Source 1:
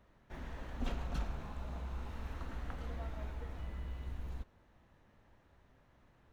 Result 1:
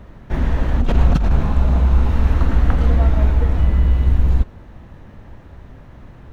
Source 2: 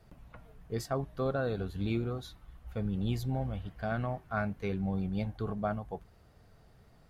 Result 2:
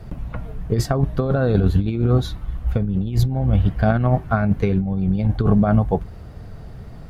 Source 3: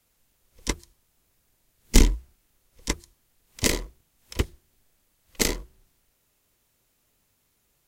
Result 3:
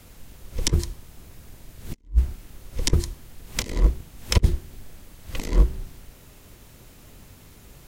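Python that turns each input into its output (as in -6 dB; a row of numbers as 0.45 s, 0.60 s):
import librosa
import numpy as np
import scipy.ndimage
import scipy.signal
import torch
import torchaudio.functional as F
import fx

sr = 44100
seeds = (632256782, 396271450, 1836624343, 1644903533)

y = fx.low_shelf(x, sr, hz=340.0, db=9.0)
y = fx.over_compress(y, sr, threshold_db=-29.0, ratio=-0.5)
y = fx.high_shelf(y, sr, hz=5100.0, db=-5.0)
y = librosa.util.normalize(y) * 10.0 ** (-3 / 20.0)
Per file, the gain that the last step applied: +19.0 dB, +12.5 dB, +7.5 dB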